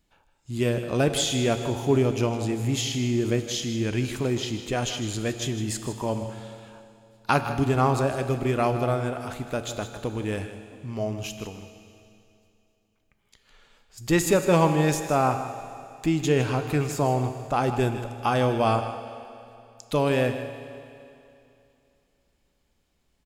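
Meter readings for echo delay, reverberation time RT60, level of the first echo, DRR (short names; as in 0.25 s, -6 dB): 0.157 s, 2.7 s, -12.5 dB, 7.5 dB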